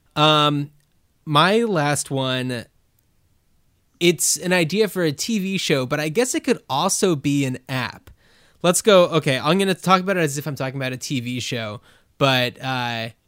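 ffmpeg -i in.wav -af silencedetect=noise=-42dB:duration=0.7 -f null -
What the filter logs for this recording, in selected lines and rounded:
silence_start: 2.99
silence_end: 4.01 | silence_duration: 1.02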